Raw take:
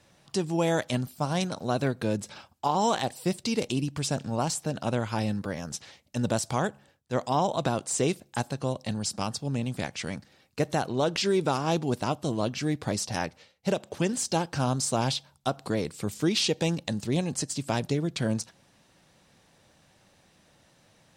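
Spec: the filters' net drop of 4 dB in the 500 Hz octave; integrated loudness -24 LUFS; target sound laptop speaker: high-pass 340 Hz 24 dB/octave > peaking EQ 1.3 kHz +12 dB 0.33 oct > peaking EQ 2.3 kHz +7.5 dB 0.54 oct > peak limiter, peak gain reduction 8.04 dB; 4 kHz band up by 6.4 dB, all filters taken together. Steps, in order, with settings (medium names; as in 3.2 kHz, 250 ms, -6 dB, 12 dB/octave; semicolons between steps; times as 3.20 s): high-pass 340 Hz 24 dB/octave; peaking EQ 500 Hz -5 dB; peaking EQ 1.3 kHz +12 dB 0.33 oct; peaking EQ 2.3 kHz +7.5 dB 0.54 oct; peaking EQ 4 kHz +6.5 dB; trim +6 dB; peak limiter -9 dBFS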